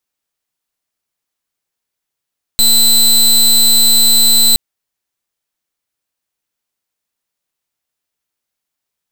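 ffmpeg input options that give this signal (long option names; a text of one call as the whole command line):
ffmpeg -f lavfi -i "aevalsrc='0.376*(2*lt(mod(4030*t,1),0.22)-1)':duration=1.97:sample_rate=44100" out.wav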